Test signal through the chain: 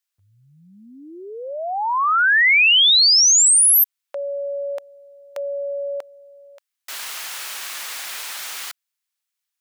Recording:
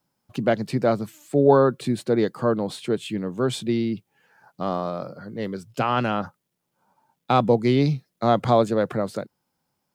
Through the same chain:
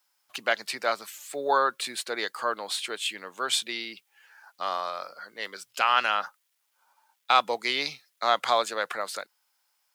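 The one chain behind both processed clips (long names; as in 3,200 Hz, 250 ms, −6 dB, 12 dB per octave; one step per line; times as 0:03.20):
high-pass filter 1,400 Hz 12 dB per octave
level +7 dB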